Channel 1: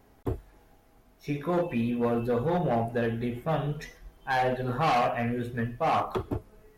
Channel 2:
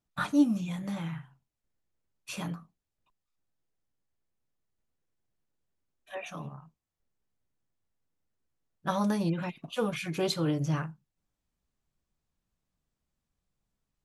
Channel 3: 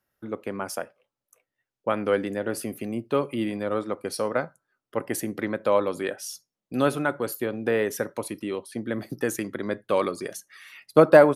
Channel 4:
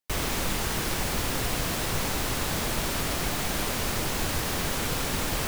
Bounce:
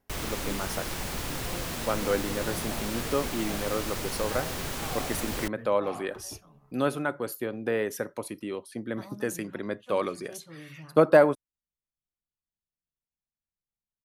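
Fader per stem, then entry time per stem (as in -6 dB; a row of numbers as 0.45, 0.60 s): -15.5, -17.5, -4.0, -5.5 dB; 0.00, 0.10, 0.00, 0.00 s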